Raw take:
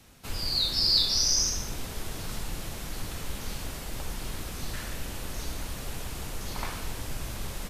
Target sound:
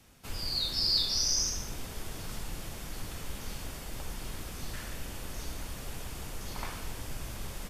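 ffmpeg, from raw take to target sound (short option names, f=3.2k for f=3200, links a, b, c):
-af "bandreject=f=4k:w=21,volume=-4dB"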